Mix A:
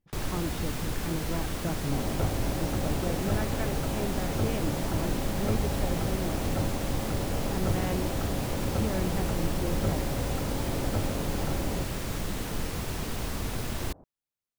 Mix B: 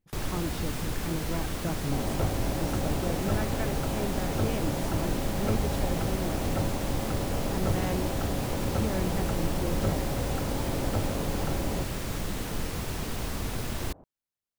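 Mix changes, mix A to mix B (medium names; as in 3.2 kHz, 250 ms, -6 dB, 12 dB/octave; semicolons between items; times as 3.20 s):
speech: remove low-pass 4.1 kHz 12 dB/octave; second sound: remove distance through air 440 m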